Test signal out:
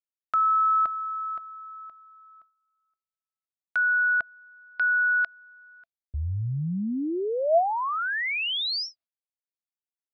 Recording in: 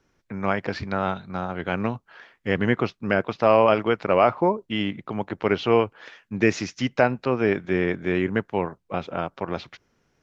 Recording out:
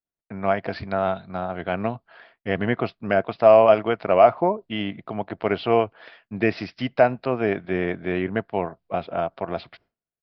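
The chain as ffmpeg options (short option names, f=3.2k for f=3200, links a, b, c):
-af "aresample=11025,aresample=44100,agate=range=-33dB:threshold=-50dB:ratio=3:detection=peak,equalizer=f=670:t=o:w=0.24:g=11.5,volume=-2dB"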